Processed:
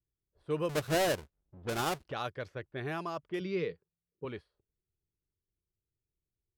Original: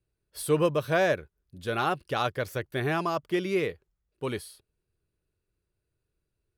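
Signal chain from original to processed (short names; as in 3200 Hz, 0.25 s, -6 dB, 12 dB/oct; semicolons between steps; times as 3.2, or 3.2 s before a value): 0.69–2.12 half-waves squared off; low-pass opened by the level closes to 370 Hz, open at -23 dBFS; 3.4–4.25 speaker cabinet 100–5200 Hz, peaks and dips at 170 Hz +9 dB, 460 Hz +6 dB, 680 Hz -5 dB, 4600 Hz +8 dB; gain -9 dB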